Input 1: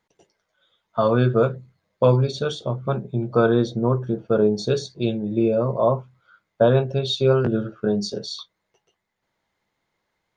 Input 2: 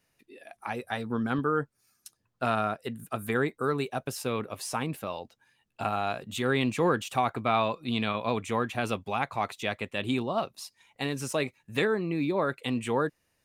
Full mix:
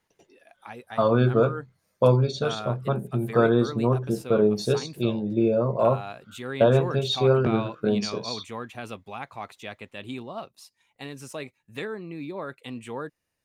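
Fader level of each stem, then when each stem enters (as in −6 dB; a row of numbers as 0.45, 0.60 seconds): −2.0, −7.0 decibels; 0.00, 0.00 seconds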